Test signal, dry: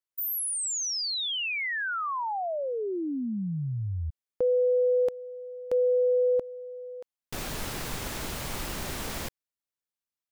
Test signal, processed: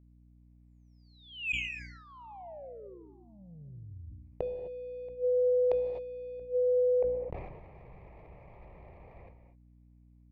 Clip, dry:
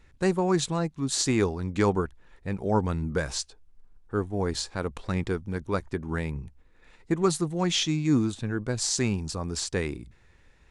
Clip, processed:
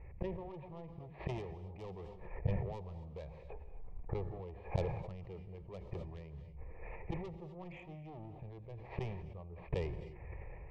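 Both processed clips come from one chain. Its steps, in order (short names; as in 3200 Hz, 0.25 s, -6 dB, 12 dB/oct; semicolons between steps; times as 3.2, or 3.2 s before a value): HPF 45 Hz 6 dB/oct; AGC gain up to 6 dB; Chebyshev low-pass 2400 Hz, order 6; low shelf 300 Hz +4.5 dB; soft clip -19.5 dBFS; flipped gate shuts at -26 dBFS, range -27 dB; fixed phaser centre 620 Hz, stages 4; non-linear reverb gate 0.28 s rising, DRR 10 dB; hum 60 Hz, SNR 24 dB; dynamic EQ 1400 Hz, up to -4 dB, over -58 dBFS, Q 1.3; sustainer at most 46 dB/s; gain +7 dB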